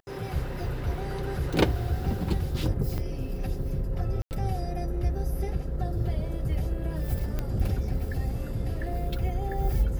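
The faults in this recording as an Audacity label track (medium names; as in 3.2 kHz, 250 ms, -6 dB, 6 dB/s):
2.980000	2.990000	dropout 5.2 ms
4.220000	4.310000	dropout 89 ms
7.390000	7.390000	pop -17 dBFS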